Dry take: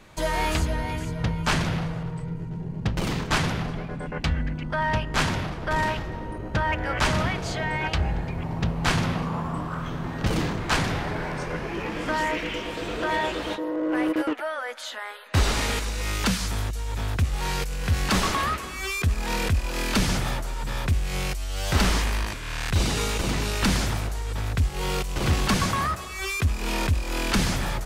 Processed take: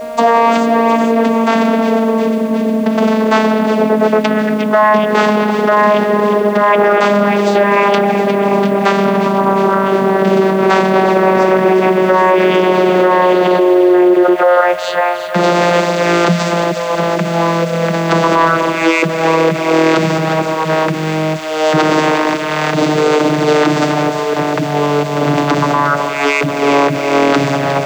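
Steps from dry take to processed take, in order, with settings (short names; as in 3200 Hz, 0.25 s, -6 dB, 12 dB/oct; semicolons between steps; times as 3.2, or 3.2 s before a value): vocoder on a gliding note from A#3, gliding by -9 st; in parallel at -0.5 dB: negative-ratio compressor -33 dBFS, ratio -0.5; on the sum: HPF 440 Hz 12 dB/oct; on a send: thin delay 0.357 s, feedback 77%, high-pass 2100 Hz, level -9 dB; on the sum: whine 630 Hz -43 dBFS; bit-crush 9-bit; tilt shelf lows +5.5 dB, about 1100 Hz; maximiser +19 dB; gain -1 dB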